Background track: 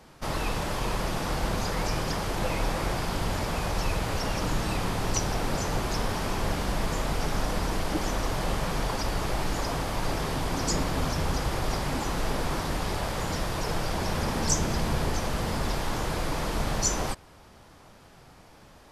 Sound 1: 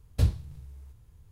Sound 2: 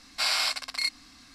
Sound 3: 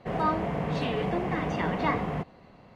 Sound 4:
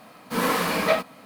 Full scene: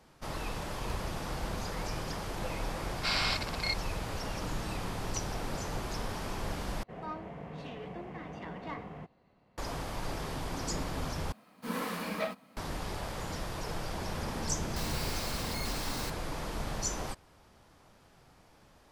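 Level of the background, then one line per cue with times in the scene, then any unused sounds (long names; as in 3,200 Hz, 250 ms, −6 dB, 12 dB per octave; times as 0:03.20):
background track −8 dB
0:00.71: mix in 1 −5.5 dB + downward compressor, threshold −31 dBFS
0:02.85: mix in 2 −2 dB + high-frequency loss of the air 110 metres
0:06.83: overwrite with 3 −14 dB + stylus tracing distortion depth 0.031 ms
0:11.32: overwrite with 4 −13.5 dB + parametric band 210 Hz +7 dB 0.48 octaves
0:14.76: mix in 2 −9 dB + sign of each sample alone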